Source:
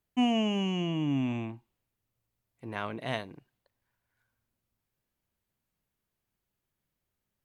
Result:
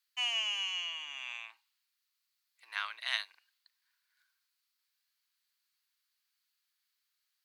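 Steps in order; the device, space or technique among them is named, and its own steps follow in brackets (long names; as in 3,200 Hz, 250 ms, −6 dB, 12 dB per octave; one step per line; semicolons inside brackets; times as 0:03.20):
headphones lying on a table (high-pass filter 1,300 Hz 24 dB per octave; parametric band 4,400 Hz +11 dB 0.53 octaves)
level +3 dB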